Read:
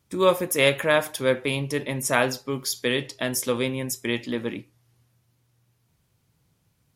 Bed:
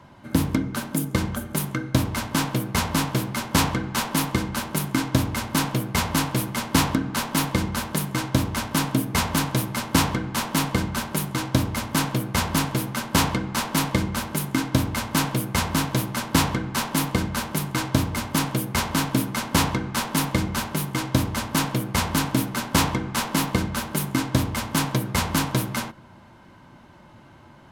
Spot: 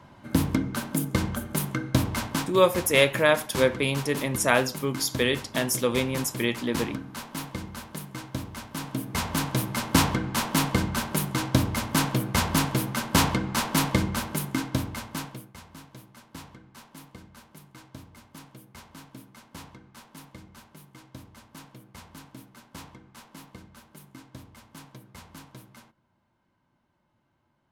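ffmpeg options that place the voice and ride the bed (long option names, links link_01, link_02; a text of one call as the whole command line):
ffmpeg -i stem1.wav -i stem2.wav -filter_complex "[0:a]adelay=2350,volume=0dB[link_01];[1:a]volume=9dB,afade=type=out:start_time=2.26:duration=0.26:silence=0.316228,afade=type=in:start_time=8.77:duration=1.11:silence=0.281838,afade=type=out:start_time=14:duration=1.53:silence=0.0749894[link_02];[link_01][link_02]amix=inputs=2:normalize=0" out.wav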